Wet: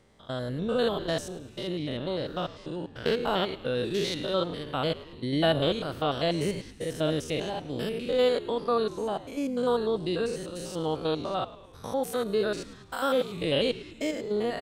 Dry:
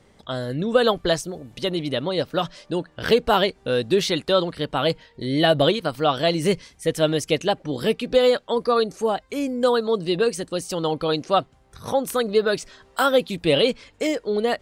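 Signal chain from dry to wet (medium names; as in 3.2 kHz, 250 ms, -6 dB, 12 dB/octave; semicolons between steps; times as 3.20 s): spectrogram pixelated in time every 100 ms; 1.67–3.78 s: treble shelf 10 kHz -9 dB; frequency-shifting echo 107 ms, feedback 59%, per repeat -75 Hz, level -17 dB; trim -4.5 dB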